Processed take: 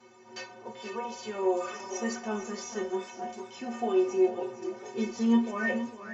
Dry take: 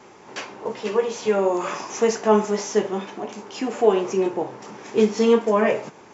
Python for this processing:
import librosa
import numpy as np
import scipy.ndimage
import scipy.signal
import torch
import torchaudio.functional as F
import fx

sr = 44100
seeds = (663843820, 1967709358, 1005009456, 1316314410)

y = fx.stiff_resonator(x, sr, f0_hz=110.0, decay_s=0.45, stiffness=0.03)
y = y + 10.0 ** (-12.5 / 20.0) * np.pad(y, (int(459 * sr / 1000.0), 0))[:len(y)]
y = fx.echo_warbled(y, sr, ms=442, feedback_pct=48, rate_hz=2.8, cents=162, wet_db=-18.5)
y = y * librosa.db_to_amplitude(3.0)